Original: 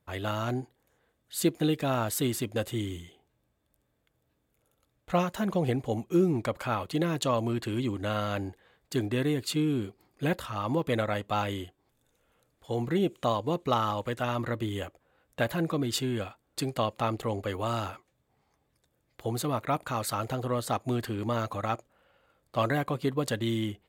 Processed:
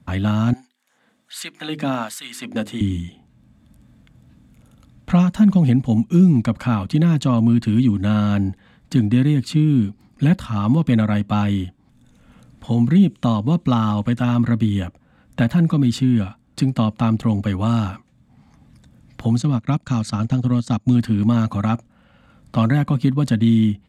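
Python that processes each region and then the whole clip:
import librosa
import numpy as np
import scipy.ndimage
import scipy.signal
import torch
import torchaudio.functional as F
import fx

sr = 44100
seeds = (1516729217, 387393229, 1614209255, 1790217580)

y = fx.chain(x, sr, fx.hum_notches(base_hz=50, count=9),
    fx.filter_lfo_highpass(shape='sine', hz=1.3, low_hz=300.0, high_hz=1800.0, q=0.74), at=(0.53, 2.81))
y = fx.chain(y, sr, fx.lowpass_res(hz=6500.0, q=1.6),
    fx.peak_eq(hz=1000.0, db=-5.5, octaves=2.8),
    fx.transient(attack_db=2, sustain_db=-11), at=(19.36, 20.95))
y = scipy.signal.sosfilt(scipy.signal.butter(2, 9100.0, 'lowpass', fs=sr, output='sos'), y)
y = fx.low_shelf_res(y, sr, hz=300.0, db=9.0, q=3.0)
y = fx.band_squash(y, sr, depth_pct=40)
y = F.gain(torch.from_numpy(y), 4.0).numpy()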